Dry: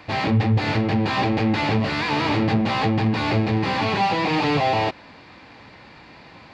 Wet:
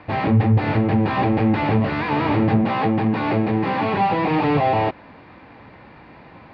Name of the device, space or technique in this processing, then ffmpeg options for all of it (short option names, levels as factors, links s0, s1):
phone in a pocket: -filter_complex "[0:a]lowpass=3100,highshelf=f=2400:g=-10,asettb=1/sr,asplit=3[s0][s1][s2];[s0]atrim=end=2.644[s3];[s1]atrim=start=2.64:end=3.97,asetpts=PTS-STARTPTS,afade=t=in:d=0.004:c=qsin,afade=t=out:st=1.326:d=0.004:c=qsin,highpass=140[s4];[s2]atrim=start=3.966[s5];[s3][s4]acrossfade=d=0.004:c1=hsin:c2=qsin[s6];[s6][s5]acrossfade=d=0.004:c1=qsin:c2=hsin,volume=1.41"